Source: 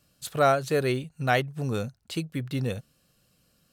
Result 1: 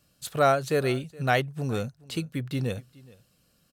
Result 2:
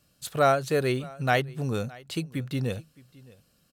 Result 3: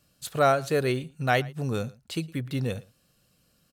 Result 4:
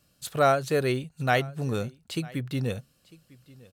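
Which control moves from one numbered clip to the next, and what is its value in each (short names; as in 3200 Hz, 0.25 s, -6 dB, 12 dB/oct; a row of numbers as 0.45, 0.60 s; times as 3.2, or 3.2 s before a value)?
echo, time: 0.42, 0.616, 0.112, 0.95 s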